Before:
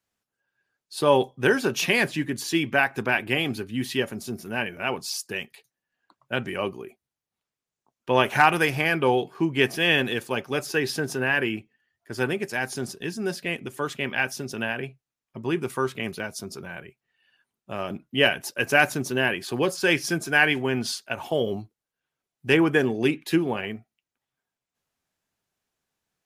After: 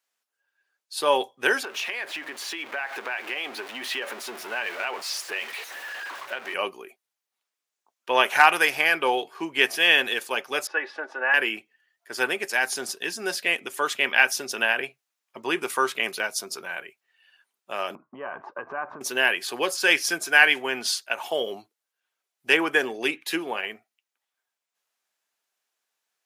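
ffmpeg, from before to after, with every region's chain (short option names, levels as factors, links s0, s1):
-filter_complex "[0:a]asettb=1/sr,asplit=3[s0][s1][s2];[s0]atrim=end=1.634[s3];[s1]atrim=start=1.63:end=6.54,asetpts=PTS-STARTPTS,afade=t=in:d=0.004:c=qsin,afade=t=out:st=4.906:d=0.004:c=qsin,aeval=exprs='val(0)+0.5*0.0251*sgn(val(0))':c=same,bass=f=250:g=-14,treble=f=4000:g=-13,acompressor=threshold=0.0355:ratio=6:attack=3.2:release=140:knee=1:detection=peak[s4];[s2]atrim=start=6.536[s5];[s3][s4]acrossfade=d=0.004:c1=hsin:c2=qsin[s6];[s6][s5]acrossfade=d=0.004:c1=qsin:c2=hsin,asettb=1/sr,asplit=3[s7][s8][s9];[s7]atrim=end=10.674[s10];[s8]atrim=start=10.67:end=11.34,asetpts=PTS-STARTPTS,afade=t=in:d=0.004:c=qsin,afade=t=out:st=0.666:d=0.004:c=qsin,asuperpass=centerf=880:order=4:qfactor=0.69,aecho=1:1:3.5:0.67,atrim=end_sample=29547[s11];[s9]atrim=start=11.336[s12];[s10][s11]acrossfade=d=0.004:c1=hsin:c2=qsin[s13];[s13][s12]acrossfade=d=0.004:c1=qsin:c2=hsin,asettb=1/sr,asplit=3[s14][s15][s16];[s14]atrim=end=17.954[s17];[s15]atrim=start=17.95:end=19.01,asetpts=PTS-STARTPTS,afade=t=in:d=0.004:c=qsin,afade=t=out:st=1.056:d=0.004:c=qsin,aemphasis=mode=reproduction:type=riaa,acompressor=threshold=0.0316:ratio=10:attack=3.2:release=140:knee=1:detection=peak,lowpass=f=1100:t=q:w=5.9[s18];[s16]atrim=start=19.006[s19];[s17][s18]acrossfade=d=0.004:c1=hsin:c2=qsin[s20];[s20][s19]acrossfade=d=0.004:c1=qsin:c2=hsin,highpass=420,tiltshelf=f=660:g=-4,dynaudnorm=f=500:g=13:m=3.76,volume=0.891"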